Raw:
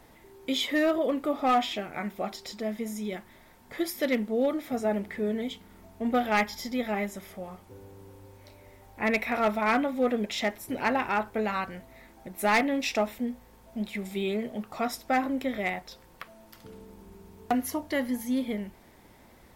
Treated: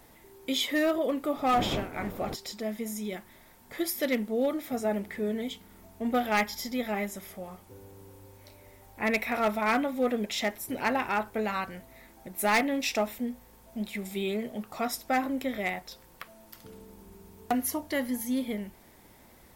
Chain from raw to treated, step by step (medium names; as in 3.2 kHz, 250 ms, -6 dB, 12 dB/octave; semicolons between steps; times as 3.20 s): 1.36–2.34 s: wind noise 480 Hz -32 dBFS; treble shelf 6.8 kHz +8.5 dB; trim -1.5 dB